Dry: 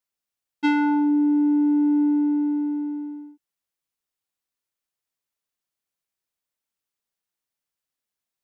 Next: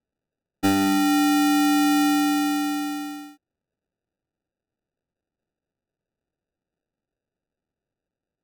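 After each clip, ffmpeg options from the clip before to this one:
ffmpeg -i in.wav -af "acrusher=samples=41:mix=1:aa=0.000001" out.wav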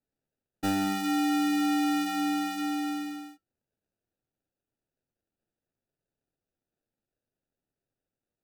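ffmpeg -i in.wav -filter_complex "[0:a]asplit=2[link_01][link_02];[link_02]alimiter=level_in=1.5dB:limit=-24dB:level=0:latency=1,volume=-1.5dB,volume=1dB[link_03];[link_01][link_03]amix=inputs=2:normalize=0,flanger=delay=6.9:depth=2.2:regen=-64:speed=0.65:shape=triangular,adynamicequalizer=threshold=0.00708:dfrequency=5500:dqfactor=0.7:tfrequency=5500:tqfactor=0.7:attack=5:release=100:ratio=0.375:range=2:mode=cutabove:tftype=highshelf,volume=-6dB" out.wav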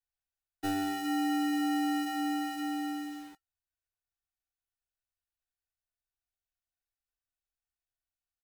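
ffmpeg -i in.wav -filter_complex "[0:a]aecho=1:1:2.7:0.93,acrossover=split=100|790|2300[link_01][link_02][link_03][link_04];[link_02]acrusher=bits=7:mix=0:aa=0.000001[link_05];[link_01][link_05][link_03][link_04]amix=inputs=4:normalize=0,volume=-7.5dB" out.wav

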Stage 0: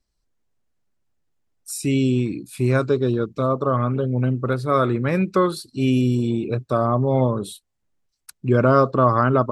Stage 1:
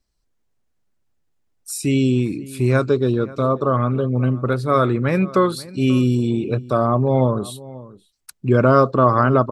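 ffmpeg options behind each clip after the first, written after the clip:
ffmpeg -i in.wav -filter_complex "[0:a]asplit=2[link_01][link_02];[link_02]adelay=536.4,volume=-19dB,highshelf=frequency=4000:gain=-12.1[link_03];[link_01][link_03]amix=inputs=2:normalize=0,volume=2dB" out.wav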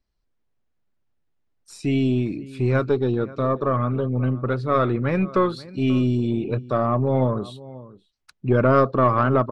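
ffmpeg -i in.wav -af "aeval=exprs='0.891*(cos(1*acos(clip(val(0)/0.891,-1,1)))-cos(1*PI/2))+0.0501*(cos(4*acos(clip(val(0)/0.891,-1,1)))-cos(4*PI/2))+0.00501*(cos(8*acos(clip(val(0)/0.891,-1,1)))-cos(8*PI/2))':channel_layout=same,lowpass=4000,volume=-3dB" out.wav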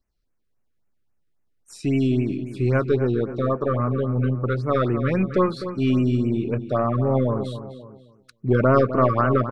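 ffmpeg -i in.wav -filter_complex "[0:a]asplit=2[link_01][link_02];[link_02]adelay=254,lowpass=frequency=3500:poles=1,volume=-11dB,asplit=2[link_03][link_04];[link_04]adelay=254,lowpass=frequency=3500:poles=1,volume=0.16[link_05];[link_01][link_03][link_05]amix=inputs=3:normalize=0,afftfilt=real='re*(1-between(b*sr/1024,750*pow(4300/750,0.5+0.5*sin(2*PI*3.7*pts/sr))/1.41,750*pow(4300/750,0.5+0.5*sin(2*PI*3.7*pts/sr))*1.41))':imag='im*(1-between(b*sr/1024,750*pow(4300/750,0.5+0.5*sin(2*PI*3.7*pts/sr))/1.41,750*pow(4300/750,0.5+0.5*sin(2*PI*3.7*pts/sr))*1.41))':win_size=1024:overlap=0.75" out.wav

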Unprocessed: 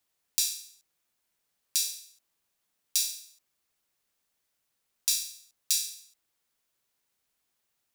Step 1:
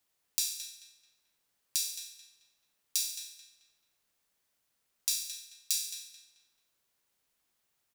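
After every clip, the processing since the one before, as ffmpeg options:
ffmpeg -i in.wav -filter_complex "[0:a]acompressor=threshold=-34dB:ratio=1.5,asplit=2[link_01][link_02];[link_02]adelay=218,lowpass=frequency=3800:poles=1,volume=-7dB,asplit=2[link_03][link_04];[link_04]adelay=218,lowpass=frequency=3800:poles=1,volume=0.38,asplit=2[link_05][link_06];[link_06]adelay=218,lowpass=frequency=3800:poles=1,volume=0.38,asplit=2[link_07][link_08];[link_08]adelay=218,lowpass=frequency=3800:poles=1,volume=0.38[link_09];[link_01][link_03][link_05][link_07][link_09]amix=inputs=5:normalize=0" out.wav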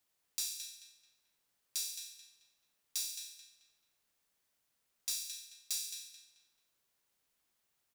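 ffmpeg -i in.wav -filter_complex "[0:a]asplit=2[link_01][link_02];[link_02]alimiter=limit=-15.5dB:level=0:latency=1:release=360,volume=-2dB[link_03];[link_01][link_03]amix=inputs=2:normalize=0,asoftclip=type=tanh:threshold=-19dB,volume=-7dB" out.wav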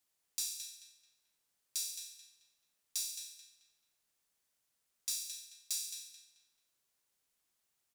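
ffmpeg -i in.wav -af "equalizer=frequency=8400:width=0.6:gain=4.5,volume=-3.5dB" out.wav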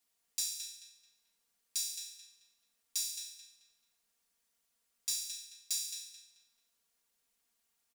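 ffmpeg -i in.wav -af "aecho=1:1:4.3:0.71" out.wav

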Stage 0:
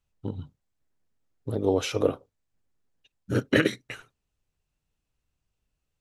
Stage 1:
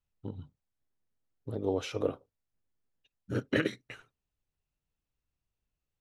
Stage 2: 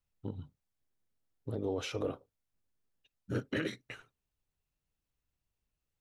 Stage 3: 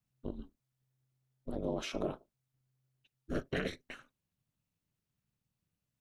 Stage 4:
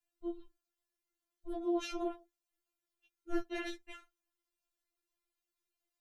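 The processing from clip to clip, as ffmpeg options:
ffmpeg -i in.wav -af "highshelf=frequency=7200:gain=-8.5,volume=-7dB" out.wav
ffmpeg -i in.wav -af "alimiter=level_in=1dB:limit=-24dB:level=0:latency=1:release=13,volume=-1dB" out.wav
ffmpeg -i in.wav -af "aeval=exprs='val(0)*sin(2*PI*130*n/s)':channel_layout=same,volume=2dB" out.wav
ffmpeg -i in.wav -af "afftfilt=real='re*4*eq(mod(b,16),0)':imag='im*4*eq(mod(b,16),0)':win_size=2048:overlap=0.75,volume=1.5dB" out.wav

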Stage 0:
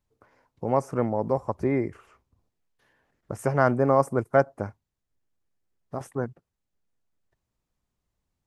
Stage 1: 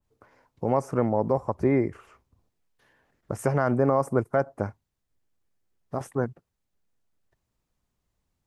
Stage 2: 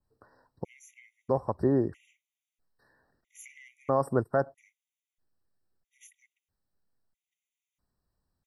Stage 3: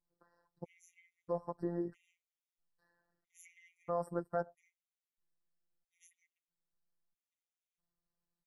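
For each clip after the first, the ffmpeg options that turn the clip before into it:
ffmpeg -i in.wav -af "alimiter=limit=-13.5dB:level=0:latency=1:release=64,adynamicequalizer=threshold=0.00891:dfrequency=1900:dqfactor=0.7:tfrequency=1900:tqfactor=0.7:attack=5:release=100:ratio=0.375:range=2:mode=cutabove:tftype=highshelf,volume=2.5dB" out.wav
ffmpeg -i in.wav -af "afftfilt=real='re*gt(sin(2*PI*0.77*pts/sr)*(1-2*mod(floor(b*sr/1024/1900),2)),0)':imag='im*gt(sin(2*PI*0.77*pts/sr)*(1-2*mod(floor(b*sr/1024/1900),2)),0)':win_size=1024:overlap=0.75,volume=-2.5dB" out.wav
ffmpeg -i in.wav -af "afftfilt=real='hypot(re,im)*cos(PI*b)':imag='0':win_size=1024:overlap=0.75,volume=-7dB" out.wav

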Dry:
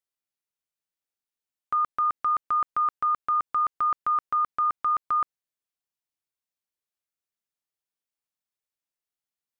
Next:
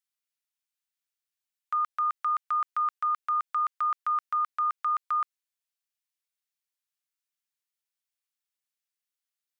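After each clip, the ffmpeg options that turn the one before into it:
ffmpeg -i in.wav -af "highpass=1400,volume=1.5dB" out.wav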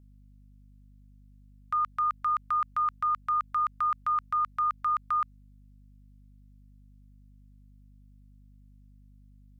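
ffmpeg -i in.wav -af "aeval=exprs='val(0)+0.002*(sin(2*PI*50*n/s)+sin(2*PI*2*50*n/s)/2+sin(2*PI*3*50*n/s)/3+sin(2*PI*4*50*n/s)/4+sin(2*PI*5*50*n/s)/5)':channel_layout=same" out.wav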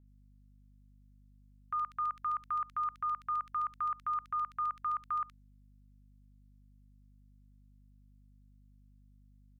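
ffmpeg -i in.wav -filter_complex "[0:a]acrossover=split=2400[link_01][link_02];[link_02]adelay=70[link_03];[link_01][link_03]amix=inputs=2:normalize=0,volume=-6dB" out.wav

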